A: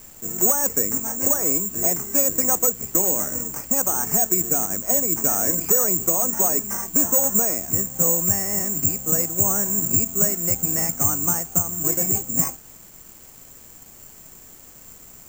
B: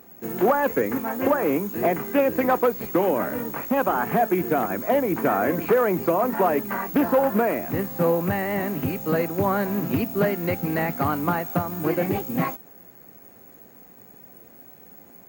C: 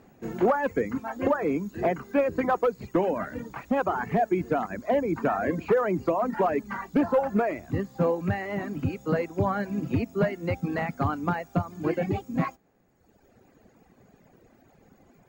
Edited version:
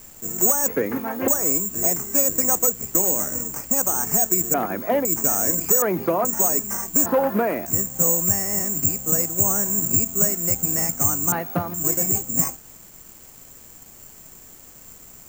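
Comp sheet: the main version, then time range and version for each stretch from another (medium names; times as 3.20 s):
A
0.68–1.28 s: from B
4.54–5.05 s: from B
5.82–6.25 s: from B
7.06–7.66 s: from B
11.32–11.74 s: from B
not used: C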